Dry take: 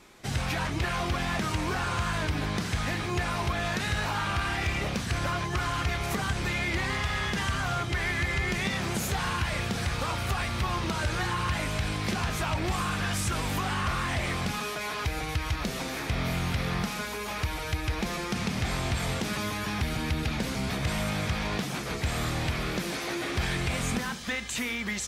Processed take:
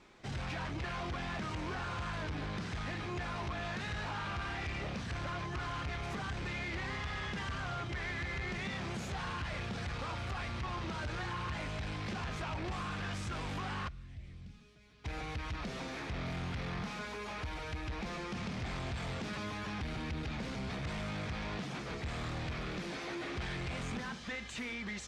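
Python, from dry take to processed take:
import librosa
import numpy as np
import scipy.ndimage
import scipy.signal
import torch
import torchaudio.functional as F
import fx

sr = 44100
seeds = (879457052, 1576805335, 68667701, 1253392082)

y = fx.tone_stack(x, sr, knobs='10-0-1', at=(13.87, 15.04), fade=0.02)
y = 10.0 ** (-29.0 / 20.0) * np.tanh(y / 10.0 ** (-29.0 / 20.0))
y = fx.air_absorb(y, sr, metres=95.0)
y = y * librosa.db_to_amplitude(-5.0)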